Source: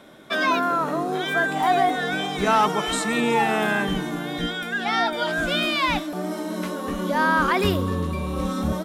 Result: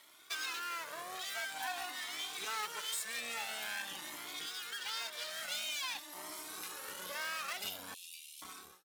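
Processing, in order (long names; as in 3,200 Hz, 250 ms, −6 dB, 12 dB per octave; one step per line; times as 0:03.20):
fade-out on the ending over 0.73 s
parametric band 11,000 Hz −4.5 dB 2.9 octaves
half-wave rectification
first difference
downward compressor 2 to 1, threshold −48 dBFS, peak gain reduction 9 dB
0:07.94–0:08.42: elliptic high-pass filter 2,600 Hz, stop band 40 dB
flanger whose copies keep moving one way rising 0.48 Hz
level +11 dB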